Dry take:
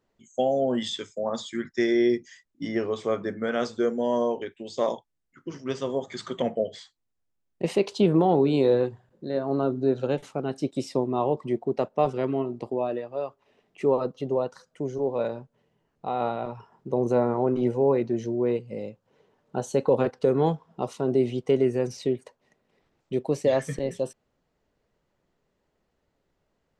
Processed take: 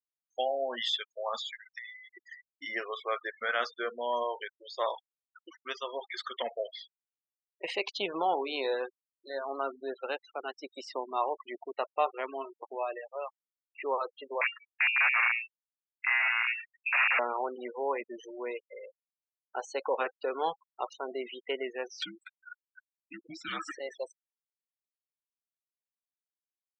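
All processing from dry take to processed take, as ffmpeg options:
-filter_complex "[0:a]asettb=1/sr,asplit=3[a][b][c];[a]atrim=end=1.454[d];[b]atrim=start=1.45:end=2.17,asetpts=PTS-STARTPTS,afade=t=in:d=0.004:c=qsin,afade=t=out:st=0.716:d=0.004:c=qsin,acompressor=threshold=-35dB:ratio=6:attack=3.2:release=140:knee=1:detection=peak,highpass=670[e];[c]atrim=start=2.166[f];[d][e]acrossfade=d=0.004:c1=hsin:c2=qsin[g];[g][f]acrossfade=d=0.004:c1=qsin:c2=hsin,asettb=1/sr,asplit=3[h][i][j];[h]atrim=end=14.414[k];[i]atrim=start=14.41:end=17.19,asetpts=PTS-STARTPTS,afade=t=in:d=0.004:c=qsin,afade=t=out:st=2.776:d=0.004:c=qsin,aeval=exprs='(mod(13.3*val(0)+1,2)-1)/13.3':c=same,lowpass=f=2.4k:t=q:w=0.5098,lowpass=f=2.4k:t=q:w=0.6013,lowpass=f=2.4k:t=q:w=0.9,lowpass=f=2.4k:t=q:w=2.563,afreqshift=-2800[l];[j]atrim=start=17.186[m];[k][l]acrossfade=d=0.004:c1=hsin:c2=qsin[n];[n][m]acrossfade=d=0.004:c1=qsin:c2=hsin,asettb=1/sr,asplit=3[o][p][q];[o]atrim=end=22.024[r];[p]atrim=start=22.02:end=23.71,asetpts=PTS-STARTPTS,afade=t=in:d=0.004:c=qsin,afade=t=out:st=1.686:d=0.004:c=qsin,lowshelf=f=300:g=6.5,acompressor=mode=upward:threshold=-25dB:ratio=2.5:attack=3.2:release=140:knee=2.83:detection=peak,afreqshift=-460[s];[q]atrim=start=23.706[t];[r][s]acrossfade=d=0.004:c1=hsin:c2=qsin[u];[u][t]acrossfade=d=0.004:c1=qsin:c2=hsin,highpass=1.2k,afftfilt=real='re*gte(hypot(re,im),0.01)':imag='im*gte(hypot(re,im),0.01)':win_size=1024:overlap=0.75,lowpass=3.5k,volume=5.5dB"

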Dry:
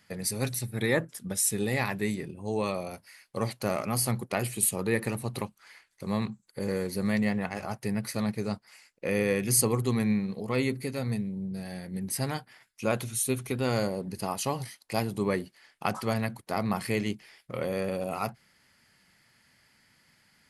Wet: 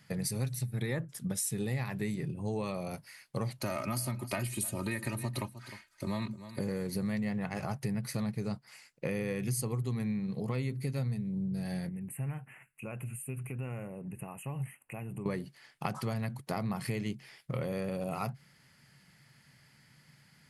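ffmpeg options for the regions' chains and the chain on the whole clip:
-filter_complex "[0:a]asettb=1/sr,asplit=3[a][b][c];[a]atrim=end=3.584[d];[b]atrim=start=3.58:end=6.6,asetpts=PTS-STARTPTS,afade=t=in:d=0.004:c=qsin,afade=t=out:st=3.016:d=0.004:c=qsin,aecho=1:1:3.2:0.77,atrim=end_sample=133182,acrossover=split=260|680[e][f][g];[e]acompressor=threshold=-34dB:ratio=4[h];[f]acompressor=threshold=-41dB:ratio=4[i];[g]acompressor=threshold=-28dB:ratio=4[j];[h][i][j]amix=inputs=3:normalize=0,aecho=1:1:307:0.133,atrim=end_sample=133182[k];[c]atrim=start=6.596[l];[d][k]acrossfade=d=0.004:c1=hsin:c2=qsin[m];[m][l]acrossfade=d=0.004:c1=qsin:c2=hsin,asettb=1/sr,asplit=3[n][o][p];[n]atrim=end=11.894[q];[o]atrim=start=11.89:end=15.26,asetpts=PTS-STARTPTS,afade=t=in:d=0.004:c=qsin,afade=t=out:st=3.366:d=0.004:c=qsin,equalizer=f=2.7k:t=o:w=0.31:g=12.5,acompressor=threshold=-47dB:ratio=2.5:attack=3.2:release=140:knee=1:detection=peak,asuperstop=centerf=4600:order=8:qfactor=0.88[r];[p]atrim=start=15.256[s];[q][r]acrossfade=d=0.004:c1=hsin:c2=qsin[t];[t][s]acrossfade=d=0.004:c1=qsin:c2=hsin,equalizer=f=140:w=2.5:g=14.5,acompressor=threshold=-31dB:ratio=6"

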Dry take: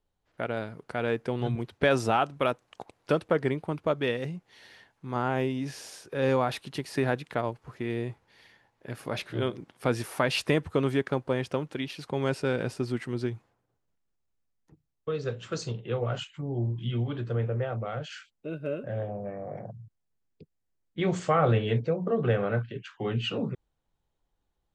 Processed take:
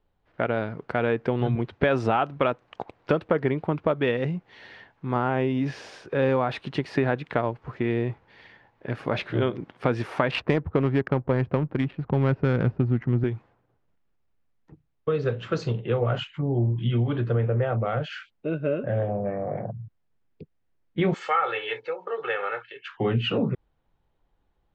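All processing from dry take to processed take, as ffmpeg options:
-filter_complex "[0:a]asettb=1/sr,asplit=3[a][b][c];[a]atrim=end=10.314[d];[b]atrim=start=10.31:end=13.24,asetpts=PTS-STARTPTS,afade=t=in:d=0.004:c=qsin,afade=t=out:st=2.926:d=0.004:c=qsin,asubboost=boost=4.5:cutoff=210,adynamicsmooth=sensitivity=3.5:basefreq=730[e];[c]atrim=start=13.236[f];[d][e]acrossfade=d=0.004:c1=hsin:c2=qsin[g];[g][f]acrossfade=d=0.004:c1=qsin:c2=hsin,asettb=1/sr,asplit=3[h][i][j];[h]atrim=end=21.144[k];[i]atrim=start=21.14:end=22.89,asetpts=PTS-STARTPTS,afade=t=in:d=0.004:c=qsin,afade=t=out:st=1.746:d=0.004:c=qsin,highpass=1.1k,aecho=1:1:2.3:0.72,atrim=end_sample=77175[l];[j]atrim=start=22.886[m];[k][l]acrossfade=d=0.004:c1=hsin:c2=qsin[n];[n][m]acrossfade=d=0.004:c1=qsin:c2=hsin,lowpass=2.8k,acompressor=threshold=-28dB:ratio=3,volume=8dB"

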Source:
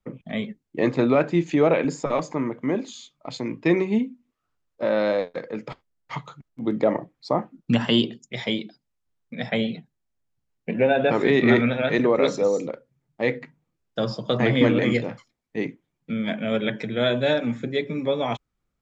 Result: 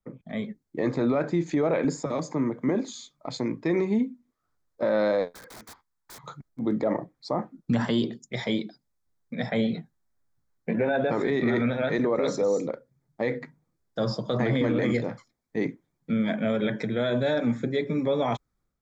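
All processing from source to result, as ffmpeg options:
-filter_complex "[0:a]asettb=1/sr,asplit=3[a][b][c];[a]atrim=end=1.974[d];[b]atrim=start=1.97:end=2.69,asetpts=PTS-STARTPTS,afade=t=in:d=0.004:c=qsin,afade=t=out:st=0.716:d=0.004:c=qsin,acrossover=split=370|3000[e][f][g];[f]acompressor=threshold=-43dB:ratio=1.5:attack=3.2:release=140:knee=2.83:detection=peak[h];[e][h][g]amix=inputs=3:normalize=0,highpass=81[i];[c]atrim=start=2.686[j];[d][i]acrossfade=d=0.004:c1=hsin:c2=qsin[k];[k][j]acrossfade=d=0.004:c1=qsin:c2=hsin,asettb=1/sr,asplit=3[l][m][n];[l]atrim=end=5.344[o];[m]atrim=start=5.34:end=6.24,asetpts=PTS-STARTPTS,afade=t=in:d=0.004:c=qsin,afade=t=out:st=0.896:d=0.004:c=qsin,lowshelf=f=750:t=q:w=3:g=-6.5,acompressor=threshold=-37dB:ratio=10:attack=3.2:release=140:knee=1:detection=peak,aeval=exprs='(mod(112*val(0)+1,2)-1)/112':c=same[p];[n]atrim=start=6.236[q];[o][p]acrossfade=d=0.004:c1=hsin:c2=qsin[r];[r][q]acrossfade=d=0.004:c1=qsin:c2=hsin,asettb=1/sr,asplit=3[s][t][u];[s]atrim=end=9.714[v];[t]atrim=start=9.71:end=10.97,asetpts=PTS-STARTPTS,afade=t=in:d=0.004:c=qsin,afade=t=out:st=1.256:d=0.004:c=qsin,equalizer=f=1.3k:w=1.2:g=4.5,asplit=2[w][x];[x]adelay=18,volume=-8.5dB[y];[w][y]amix=inputs=2:normalize=0,atrim=end_sample=55566[z];[u]atrim=start=10.966[aa];[v][z]acrossfade=d=0.004:c1=hsin:c2=qsin[ab];[ab][aa]acrossfade=d=0.004:c1=qsin:c2=hsin,equalizer=f=2.8k:t=o:w=0.36:g=-14,dynaudnorm=f=310:g=3:m=7.5dB,alimiter=limit=-11dB:level=0:latency=1:release=27,volume=-5.5dB"

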